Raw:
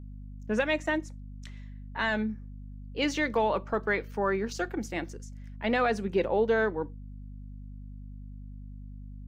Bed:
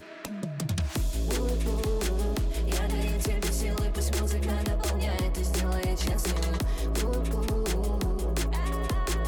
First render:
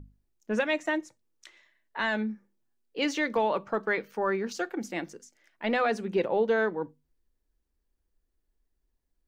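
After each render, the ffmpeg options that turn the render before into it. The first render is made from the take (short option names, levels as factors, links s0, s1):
-af "bandreject=f=50:t=h:w=6,bandreject=f=100:t=h:w=6,bandreject=f=150:t=h:w=6,bandreject=f=200:t=h:w=6,bandreject=f=250:t=h:w=6"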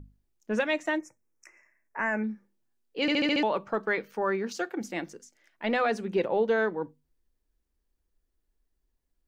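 -filter_complex "[0:a]asettb=1/sr,asplit=3[s0][s1][s2];[s0]atrim=end=0.994[s3];[s1]atrim=start=0.99:end=2.24,asetpts=PTS-STARTPTS,afade=t=in:d=0.004:c=qsin,afade=t=out:st=1.246:d=0.004:c=qsin,asuperstop=centerf=3700:order=12:qfactor=1.4[s4];[s2]atrim=start=2.236[s5];[s3][s4]acrossfade=d=0.004:c1=hsin:c2=qsin[s6];[s6][s5]acrossfade=d=0.004:c1=qsin:c2=hsin,asettb=1/sr,asplit=3[s7][s8][s9];[s7]atrim=end=4.224[s10];[s8]atrim=start=4.22:end=4.81,asetpts=PTS-STARTPTS,afade=t=in:d=0.004:c=qsin,afade=t=out:st=0.586:d=0.004:c=qsin,highpass=61[s11];[s9]atrim=start=4.806[s12];[s10][s11]acrossfade=d=0.004:c1=hsin:c2=qsin[s13];[s13][s12]acrossfade=d=0.004:c1=qsin:c2=hsin,asplit=7[s14][s15][s16][s17][s18][s19][s20];[s14]atrim=end=3.082[s21];[s15]atrim=start=3.008:end=3.082[s22];[s16]atrim=start=3.008:end=3.082[s23];[s17]atrim=start=3.008:end=3.082[s24];[s18]atrim=start=3.008:end=3.082[s25];[s19]atrim=start=3.008:end=3.082[s26];[s20]atrim=start=3.428[s27];[s21][s22]acrossfade=d=0.004:c1=hsin:c2=hsin[s28];[s28][s23]acrossfade=d=0.004:c1=hsin:c2=hsin[s29];[s29][s24]acrossfade=d=0.004:c1=hsin:c2=hsin[s30];[s30][s25]acrossfade=d=0.004:c1=hsin:c2=hsin[s31];[s31][s26]acrossfade=d=0.004:c1=hsin:c2=hsin[s32];[s32][s27]acrossfade=d=0.004:c1=hsin:c2=hsin"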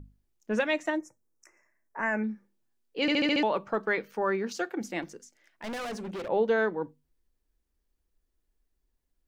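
-filter_complex "[0:a]asettb=1/sr,asplit=3[s0][s1][s2];[s0]atrim=end=0.904[s3];[s1]atrim=start=0.9:end=2.03,asetpts=PTS-STARTPTS,afade=t=in:d=0.004:c=qsin,afade=t=out:st=1.126:d=0.004:c=qsin,equalizer=f=2500:t=o:w=1.2:g=-10[s4];[s2]atrim=start=2.026[s5];[s3][s4]acrossfade=d=0.004:c1=hsin:c2=qsin[s6];[s6][s5]acrossfade=d=0.004:c1=qsin:c2=hsin,asettb=1/sr,asplit=3[s7][s8][s9];[s7]atrim=end=5.024[s10];[s8]atrim=start=5.02:end=6.29,asetpts=PTS-STARTPTS,afade=t=in:d=0.004:c=qsin,afade=t=out:st=1.266:d=0.004:c=qsin,volume=50.1,asoftclip=hard,volume=0.02[s11];[s9]atrim=start=6.286[s12];[s10][s11]acrossfade=d=0.004:c1=hsin:c2=qsin[s13];[s13][s12]acrossfade=d=0.004:c1=qsin:c2=hsin"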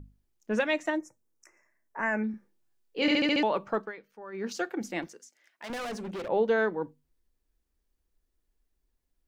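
-filter_complex "[0:a]asettb=1/sr,asplit=3[s0][s1][s2];[s0]atrim=end=2.314[s3];[s1]atrim=start=2.31:end=3.17,asetpts=PTS-STARTPTS,afade=t=in:d=0.004:c=qsin,afade=t=out:st=0.856:d=0.004:c=qsin,asplit=2[s4][s5];[s5]adelay=27,volume=0.531[s6];[s4][s6]amix=inputs=2:normalize=0,atrim=end_sample=37926[s7];[s2]atrim=start=3.166[s8];[s3][s7]acrossfade=d=0.004:c1=hsin:c2=qsin[s9];[s9][s8]acrossfade=d=0.004:c1=qsin:c2=hsin,asettb=1/sr,asplit=3[s10][s11][s12];[s10]atrim=end=5.074[s13];[s11]atrim=start=5.07:end=5.7,asetpts=PTS-STARTPTS,afade=t=in:d=0.004:c=qsin,afade=t=out:st=0.626:d=0.004:c=qsin,highpass=f=640:p=1[s14];[s12]atrim=start=5.696[s15];[s13][s14]acrossfade=d=0.004:c1=hsin:c2=qsin[s16];[s16][s15]acrossfade=d=0.004:c1=qsin:c2=hsin,asplit=3[s17][s18][s19];[s17]atrim=end=3.92,asetpts=PTS-STARTPTS,afade=t=out:st=3.78:d=0.14:silence=0.158489[s20];[s18]atrim=start=3.92:end=4.32,asetpts=PTS-STARTPTS,volume=0.158[s21];[s19]atrim=start=4.32,asetpts=PTS-STARTPTS,afade=t=in:d=0.14:silence=0.158489[s22];[s20][s21][s22]concat=n=3:v=0:a=1"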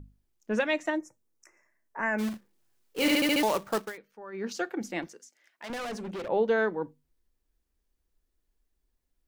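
-filter_complex "[0:a]asplit=3[s0][s1][s2];[s0]afade=t=out:st=2.18:d=0.02[s3];[s1]acrusher=bits=2:mode=log:mix=0:aa=0.000001,afade=t=in:st=2.18:d=0.02,afade=t=out:st=3.96:d=0.02[s4];[s2]afade=t=in:st=3.96:d=0.02[s5];[s3][s4][s5]amix=inputs=3:normalize=0"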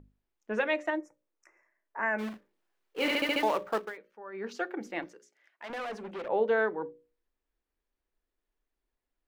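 -af "bass=f=250:g=-10,treble=f=4000:g=-13,bandreject=f=60:t=h:w=6,bandreject=f=120:t=h:w=6,bandreject=f=180:t=h:w=6,bandreject=f=240:t=h:w=6,bandreject=f=300:t=h:w=6,bandreject=f=360:t=h:w=6,bandreject=f=420:t=h:w=6,bandreject=f=480:t=h:w=6,bandreject=f=540:t=h:w=6,bandreject=f=600:t=h:w=6"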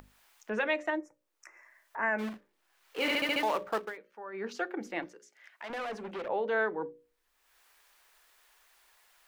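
-filter_complex "[0:a]acrossover=split=730[s0][s1];[s0]alimiter=level_in=1.58:limit=0.0631:level=0:latency=1,volume=0.631[s2];[s1]acompressor=mode=upward:threshold=0.00794:ratio=2.5[s3];[s2][s3]amix=inputs=2:normalize=0"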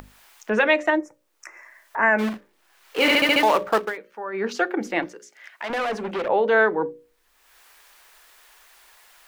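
-af "volume=3.76"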